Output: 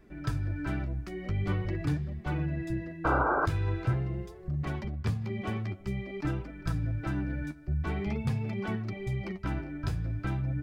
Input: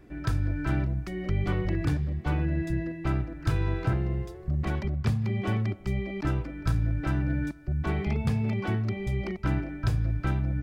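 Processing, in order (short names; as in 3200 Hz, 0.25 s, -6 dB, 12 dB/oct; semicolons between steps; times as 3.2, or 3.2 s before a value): flange 0.46 Hz, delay 4.4 ms, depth 9.4 ms, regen +32%; painted sound noise, 3.04–3.46, 250–1600 Hz -27 dBFS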